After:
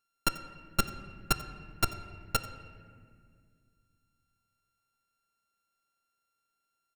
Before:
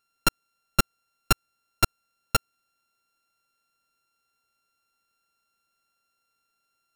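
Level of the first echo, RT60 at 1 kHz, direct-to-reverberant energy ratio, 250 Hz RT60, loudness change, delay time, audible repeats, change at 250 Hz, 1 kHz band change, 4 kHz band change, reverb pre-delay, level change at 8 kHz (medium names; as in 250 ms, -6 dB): -19.5 dB, 1.8 s, 9.5 dB, 3.0 s, -6.5 dB, 89 ms, 1, -5.5 dB, -6.0 dB, -6.0 dB, 3 ms, -6.5 dB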